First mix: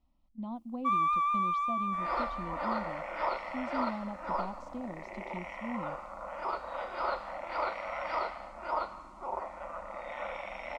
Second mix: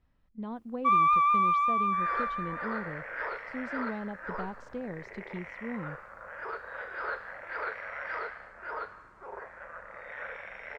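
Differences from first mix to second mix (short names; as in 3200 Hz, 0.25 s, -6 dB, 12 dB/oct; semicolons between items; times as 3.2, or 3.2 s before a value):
second sound -10.0 dB; master: remove fixed phaser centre 440 Hz, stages 6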